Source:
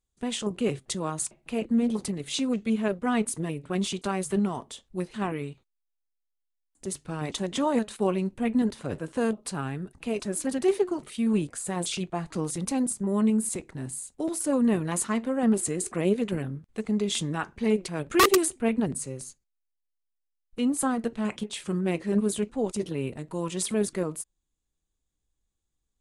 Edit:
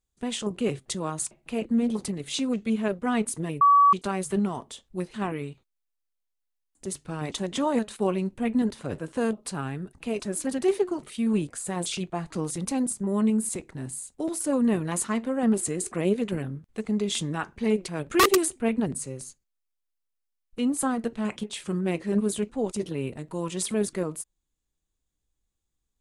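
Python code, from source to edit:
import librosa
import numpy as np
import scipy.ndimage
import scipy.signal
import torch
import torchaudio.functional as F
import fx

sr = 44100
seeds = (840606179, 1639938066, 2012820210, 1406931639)

y = fx.edit(x, sr, fx.bleep(start_s=3.61, length_s=0.32, hz=1140.0, db=-13.5), tone=tone)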